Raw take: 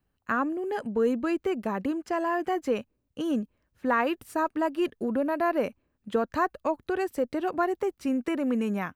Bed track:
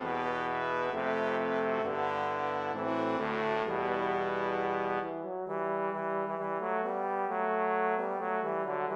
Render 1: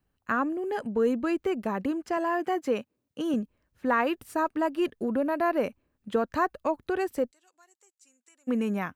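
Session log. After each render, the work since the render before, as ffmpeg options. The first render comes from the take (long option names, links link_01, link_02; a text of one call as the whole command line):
ffmpeg -i in.wav -filter_complex "[0:a]asettb=1/sr,asplit=3[link_01][link_02][link_03];[link_01]atrim=end=2.174[link_04];[link_02]atrim=start=2.17:end=3.34,asetpts=PTS-STARTPTS,afade=type=in:duration=0.004:curve=qsin,afade=type=out:start_time=1.166:duration=0.004:curve=qsin,highpass=140[link_05];[link_03]atrim=start=3.336[link_06];[link_04][link_05]acrossfade=duration=0.004:curve1=hsin:curve2=qsin[link_07];[link_07][link_06]acrossfade=duration=0.004:curve1=qsin:curve2=hsin,asplit=3[link_08][link_09][link_10];[link_08]afade=type=out:start_time=7.3:duration=0.02[link_11];[link_09]bandpass=frequency=7300:width_type=q:width=5.8,afade=type=in:start_time=7.3:duration=0.02,afade=type=out:start_time=8.47:duration=0.02[link_12];[link_10]afade=type=in:start_time=8.47:duration=0.02[link_13];[link_11][link_12][link_13]amix=inputs=3:normalize=0" out.wav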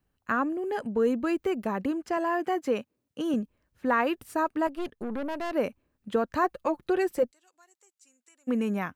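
ffmpeg -i in.wav -filter_complex "[0:a]asettb=1/sr,asplit=3[link_01][link_02][link_03];[link_01]atrim=end=1.224[link_04];[link_02]atrim=start=1.22:end=1.65,asetpts=PTS-STARTPTS,afade=type=in:duration=0.004:curve=qsin,afade=type=out:start_time=0.426:duration=0.004:curve=qsin,highshelf=frequency=12000:gain=6[link_05];[link_03]atrim=start=1.646[link_06];[link_04][link_05]acrossfade=duration=0.004:curve1=hsin:curve2=qsin[link_07];[link_07][link_06]acrossfade=duration=0.004:curve1=qsin:curve2=hsin,asettb=1/sr,asplit=3[link_08][link_09][link_10];[link_08]atrim=end=4.674[link_11];[link_09]atrim=start=4.67:end=5.52,asetpts=PTS-STARTPTS,afade=type=in:duration=0.004:curve=qsin,afade=type=out:start_time=0.846:duration=0.004:curve=qsin,aeval=exprs='(tanh(28.2*val(0)+0.7)-tanh(0.7))/28.2':channel_layout=same[link_12];[link_10]atrim=start=5.516[link_13];[link_11][link_12]acrossfade=duration=0.004:curve1=hsin:curve2=qsin[link_14];[link_14][link_13]acrossfade=duration=0.004:curve1=qsin:curve2=hsin,asettb=1/sr,asplit=3[link_15][link_16][link_17];[link_15]atrim=end=6.434[link_18];[link_16]atrim=start=6.43:end=7.23,asetpts=PTS-STARTPTS,afade=type=in:duration=0.004:curve=qsin,afade=type=out:start_time=0.796:duration=0.004:curve=qsin,aecho=1:1:5.7:0.62,atrim=end_sample=35280[link_19];[link_17]atrim=start=7.226[link_20];[link_18][link_19]acrossfade=duration=0.004:curve1=hsin:curve2=qsin[link_21];[link_21][link_20]acrossfade=duration=0.004:curve1=qsin:curve2=hsin" out.wav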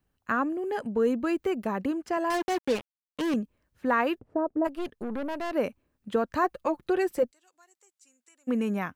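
ffmpeg -i in.wav -filter_complex "[0:a]asettb=1/sr,asplit=3[link_01][link_02][link_03];[link_01]atrim=end=2.304[link_04];[link_02]atrim=start=2.3:end=3.34,asetpts=PTS-STARTPTS,afade=type=in:duration=0.004:curve=qsin,afade=type=out:start_time=1.036:duration=0.004:curve=qsin,acrusher=bits=4:mix=0:aa=0.5[link_05];[link_03]atrim=start=3.336[link_06];[link_04][link_05]acrossfade=duration=0.004:curve1=hsin:curve2=qsin[link_07];[link_07][link_06]acrossfade=duration=0.004:curve1=qsin:curve2=hsin,asplit=3[link_08][link_09][link_10];[link_08]afade=type=out:start_time=4.18:duration=0.02[link_11];[link_09]lowpass=frequency=570:width_type=q:width=1.5,afade=type=in:start_time=4.18:duration=0.02,afade=type=out:start_time=4.64:duration=0.02[link_12];[link_10]afade=type=in:start_time=4.64:duration=0.02[link_13];[link_11][link_12][link_13]amix=inputs=3:normalize=0" out.wav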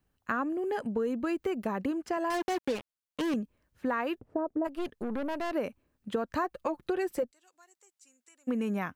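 ffmpeg -i in.wav -af "acompressor=threshold=-27dB:ratio=6" out.wav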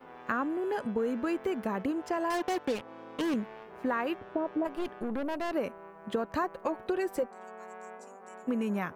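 ffmpeg -i in.wav -i bed.wav -filter_complex "[1:a]volume=-16dB[link_01];[0:a][link_01]amix=inputs=2:normalize=0" out.wav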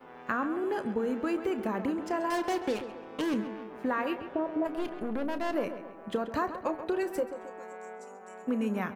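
ffmpeg -i in.wav -filter_complex "[0:a]asplit=2[link_01][link_02];[link_02]adelay=32,volume=-13dB[link_03];[link_01][link_03]amix=inputs=2:normalize=0,asplit=2[link_04][link_05];[link_05]adelay=134,lowpass=frequency=3100:poles=1,volume=-10.5dB,asplit=2[link_06][link_07];[link_07]adelay=134,lowpass=frequency=3100:poles=1,volume=0.51,asplit=2[link_08][link_09];[link_09]adelay=134,lowpass=frequency=3100:poles=1,volume=0.51,asplit=2[link_10][link_11];[link_11]adelay=134,lowpass=frequency=3100:poles=1,volume=0.51,asplit=2[link_12][link_13];[link_13]adelay=134,lowpass=frequency=3100:poles=1,volume=0.51,asplit=2[link_14][link_15];[link_15]adelay=134,lowpass=frequency=3100:poles=1,volume=0.51[link_16];[link_04][link_06][link_08][link_10][link_12][link_14][link_16]amix=inputs=7:normalize=0" out.wav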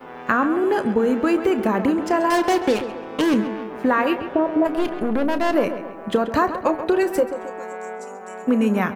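ffmpeg -i in.wav -af "volume=11.5dB" out.wav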